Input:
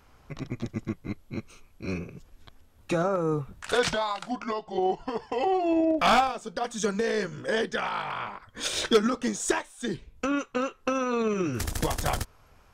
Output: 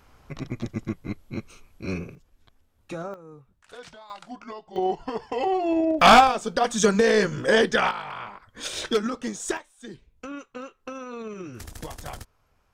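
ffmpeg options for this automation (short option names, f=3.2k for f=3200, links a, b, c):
-af "asetnsamples=n=441:p=0,asendcmd='2.15 volume volume -8dB;3.14 volume volume -19dB;4.1 volume volume -7.5dB;4.76 volume volume 1dB;6.01 volume volume 8dB;7.91 volume volume -2.5dB;9.57 volume volume -9.5dB',volume=2dB"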